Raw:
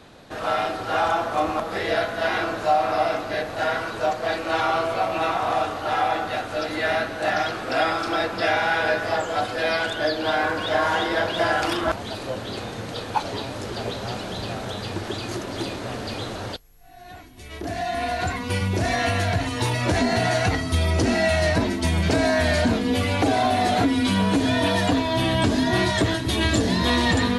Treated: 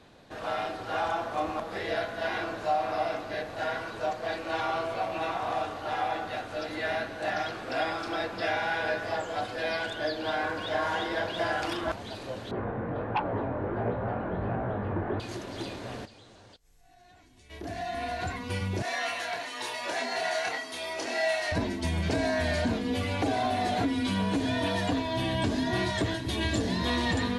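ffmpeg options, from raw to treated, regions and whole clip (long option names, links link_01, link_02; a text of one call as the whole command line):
ffmpeg -i in.wav -filter_complex "[0:a]asettb=1/sr,asplit=3[link_01][link_02][link_03];[link_01]atrim=end=12.514[link_04];[link_02]atrim=start=12.51:end=15.2,asetpts=PTS-STARTPTS,afade=type=in:duration=0.004:curve=qsin,afade=type=out:start_time=2.686:duration=0.004:curve=qsin,lowpass=frequency=1600:width=0.5412,lowpass=frequency=1600:width=1.3066,flanger=delay=16.5:depth=6.7:speed=1.4,aeval=exprs='0.188*sin(PI/2*2.24*val(0)/0.188)':channel_layout=same[link_05];[link_03]atrim=start=15.196[link_06];[link_04][link_05]acrossfade=duration=0.004:curve1=hsin:curve2=qsin[link_07];[link_07][link_06]acrossfade=duration=0.004:curve1=qsin:curve2=hsin,asettb=1/sr,asplit=3[link_08][link_09][link_10];[link_08]atrim=end=16.054[link_11];[link_09]atrim=start=16.05:end=17.5,asetpts=PTS-STARTPTS,afade=type=in:duration=0.004:curve=qsin,afade=type=out:start_time=1.446:duration=0.004:curve=qsin,lowpass=frequency=8900:width=0.5412,lowpass=frequency=8900:width=1.3066,highshelf=frequency=5900:gain=10.5,acompressor=threshold=-48dB:ratio=3:attack=3.2:release=140:knee=1:detection=peak[link_12];[link_10]atrim=start=17.496[link_13];[link_11][link_12]acrossfade=duration=0.004:curve1=hsin:curve2=qsin[link_14];[link_14][link_13]acrossfade=duration=0.004:curve1=qsin:curve2=hsin,asettb=1/sr,asplit=3[link_15][link_16][link_17];[link_15]atrim=end=18.824[link_18];[link_16]atrim=start=18.82:end=21.52,asetpts=PTS-STARTPTS,afade=type=in:duration=0.004:curve=qsin,afade=type=out:start_time=2.696:duration=0.004:curve=qsin,highpass=590,asplit=2[link_19][link_20];[link_20]adelay=28,volume=-3.5dB[link_21];[link_19][link_21]amix=inputs=2:normalize=0,atrim=end_sample=119070[link_22];[link_17]atrim=start=21.516[link_23];[link_18][link_22]acrossfade=duration=0.004:curve1=hsin:curve2=qsin[link_24];[link_24][link_23]acrossfade=duration=0.004:curve1=qsin:curve2=hsin,highshelf=frequency=9700:gain=-6,bandreject=frequency=1300:width=16,volume=-7.5dB" out.wav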